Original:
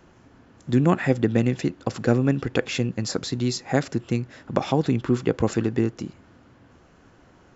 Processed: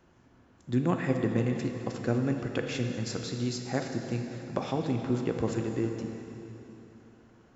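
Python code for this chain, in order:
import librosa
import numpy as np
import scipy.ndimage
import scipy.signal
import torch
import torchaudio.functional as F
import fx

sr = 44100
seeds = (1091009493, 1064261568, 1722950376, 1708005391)

y = fx.rev_plate(x, sr, seeds[0], rt60_s=3.4, hf_ratio=0.9, predelay_ms=0, drr_db=3.5)
y = y * librosa.db_to_amplitude(-9.0)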